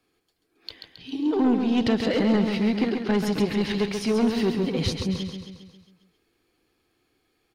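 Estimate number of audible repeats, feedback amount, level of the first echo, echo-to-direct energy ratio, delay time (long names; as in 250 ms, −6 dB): 6, 55%, −6.0 dB, −4.5 dB, 135 ms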